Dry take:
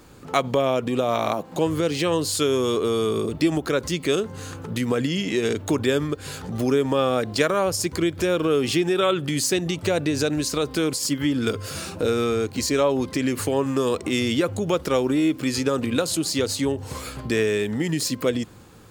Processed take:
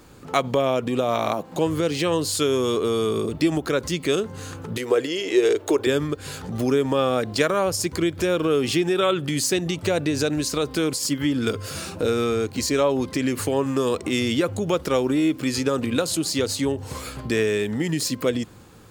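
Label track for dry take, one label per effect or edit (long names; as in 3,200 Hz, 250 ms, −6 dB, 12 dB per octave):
4.770000	5.870000	low shelf with overshoot 280 Hz −10.5 dB, Q 3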